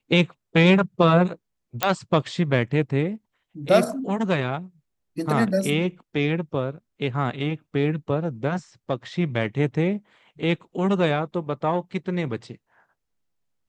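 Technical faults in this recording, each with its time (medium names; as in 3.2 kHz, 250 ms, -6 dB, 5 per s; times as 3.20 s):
1.83 s: pop -4 dBFS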